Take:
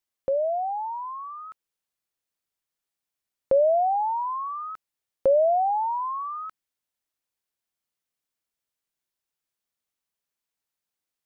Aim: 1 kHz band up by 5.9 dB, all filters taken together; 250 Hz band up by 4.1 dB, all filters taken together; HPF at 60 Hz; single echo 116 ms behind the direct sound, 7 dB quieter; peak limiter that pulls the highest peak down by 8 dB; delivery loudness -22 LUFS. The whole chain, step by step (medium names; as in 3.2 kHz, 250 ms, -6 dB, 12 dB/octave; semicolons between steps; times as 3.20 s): high-pass 60 Hz; peaking EQ 250 Hz +5 dB; peaking EQ 1 kHz +7.5 dB; peak limiter -17.5 dBFS; delay 116 ms -7 dB; trim +0.5 dB